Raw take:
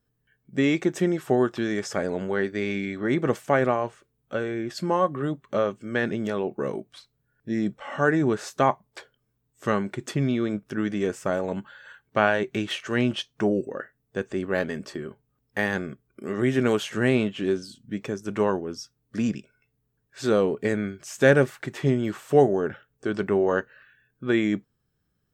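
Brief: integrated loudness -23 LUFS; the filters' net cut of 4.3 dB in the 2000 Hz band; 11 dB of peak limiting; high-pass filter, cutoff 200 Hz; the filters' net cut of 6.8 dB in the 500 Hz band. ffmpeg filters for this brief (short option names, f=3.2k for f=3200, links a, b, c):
-af "highpass=200,equalizer=f=500:t=o:g=-8.5,equalizer=f=2k:t=o:g=-5,volume=10dB,alimiter=limit=-9.5dB:level=0:latency=1"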